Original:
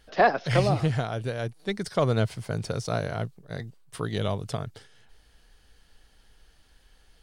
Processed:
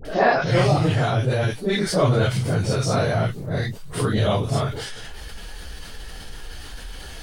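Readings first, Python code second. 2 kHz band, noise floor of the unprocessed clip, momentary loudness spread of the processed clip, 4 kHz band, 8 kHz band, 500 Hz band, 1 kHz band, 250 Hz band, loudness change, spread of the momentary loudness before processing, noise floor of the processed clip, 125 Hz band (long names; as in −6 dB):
+6.0 dB, −60 dBFS, 20 LU, +8.5 dB, +10.5 dB, +6.0 dB, +4.5 dB, +7.0 dB, +6.5 dB, 14 LU, −37 dBFS, +7.5 dB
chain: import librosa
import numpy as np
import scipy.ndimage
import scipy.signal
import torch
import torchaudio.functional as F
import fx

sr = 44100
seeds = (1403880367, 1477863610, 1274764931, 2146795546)

y = fx.phase_scramble(x, sr, seeds[0], window_ms=100)
y = fx.dynamic_eq(y, sr, hz=130.0, q=7.1, threshold_db=-41.0, ratio=4.0, max_db=4)
y = fx.dmg_crackle(y, sr, seeds[1], per_s=14.0, level_db=-59.0)
y = fx.dispersion(y, sr, late='highs', ms=52.0, hz=1100.0)
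y = fx.env_flatten(y, sr, amount_pct=50)
y = y * librosa.db_to_amplitude(2.5)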